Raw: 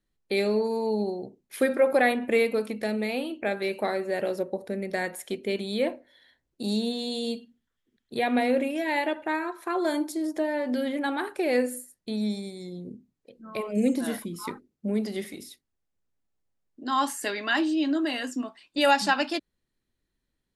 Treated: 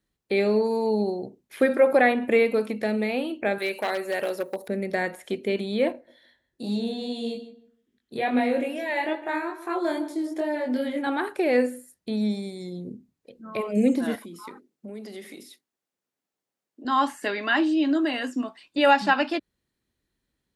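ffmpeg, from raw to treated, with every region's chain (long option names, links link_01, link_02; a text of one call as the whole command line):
ffmpeg -i in.wav -filter_complex "[0:a]asettb=1/sr,asplit=3[link_01][link_02][link_03];[link_01]atrim=end=3.584[link_04];[link_02]atrim=start=3.58:end=4.68,asetpts=PTS-STARTPTS,afade=type=in:duration=0.004:curve=qsin,afade=type=out:start_time=1.096:duration=0.004:curve=qsin,aeval=exprs='0.1*(abs(mod(val(0)/0.1+3,4)-2)-1)':channel_layout=same,aemphasis=mode=production:type=riaa[link_05];[link_03]atrim=start=4.676[link_06];[link_04][link_05]acrossfade=duration=0.004:curve1=hsin:curve2=qsin[link_07];[link_07][link_06]acrossfade=duration=0.004:curve1=qsin:curve2=hsin,asettb=1/sr,asplit=3[link_08][link_09][link_10];[link_08]atrim=end=5.924[link_11];[link_09]atrim=start=5.92:end=11.07,asetpts=PTS-STARTPTS,afade=type=in:duration=0.004:curve=qsin,afade=type=out:start_time=5.146:duration=0.004:curve=qsin,flanger=delay=20:depth=3.8:speed=2.4,asplit=2[link_12][link_13];[link_13]adelay=154,lowpass=frequency=1600:poles=1,volume=-13dB,asplit=2[link_14][link_15];[link_15]adelay=154,lowpass=frequency=1600:poles=1,volume=0.24,asplit=2[link_16][link_17];[link_17]adelay=154,lowpass=frequency=1600:poles=1,volume=0.24[link_18];[link_12][link_14][link_16][link_18]amix=inputs=4:normalize=0,atrim=end_sample=227115[link_19];[link_10]atrim=start=11.066[link_20];[link_11][link_19]acrossfade=duration=0.004:curve1=hsin:curve2=qsin[link_21];[link_21][link_20]acrossfade=duration=0.004:curve1=qsin:curve2=hsin,asettb=1/sr,asplit=3[link_22][link_23][link_24];[link_22]atrim=end=14.154[link_25];[link_23]atrim=start=14.15:end=16.85,asetpts=PTS-STARTPTS,afade=type=in:duration=0.004:curve=qsin,afade=type=out:start_time=2.696:duration=0.004:curve=qsin,highpass=250,acompressor=threshold=-41dB:ratio=3:attack=3.2:release=140:knee=1:detection=peak[link_26];[link_24]atrim=start=16.846[link_27];[link_25][link_26]acrossfade=duration=0.004:curve1=hsin:curve2=qsin[link_28];[link_28][link_27]acrossfade=duration=0.004:curve1=qsin:curve2=hsin,acrossover=split=3400[link_29][link_30];[link_30]acompressor=threshold=-50dB:ratio=4:attack=1:release=60[link_31];[link_29][link_31]amix=inputs=2:normalize=0,highpass=44,volume=3dB" out.wav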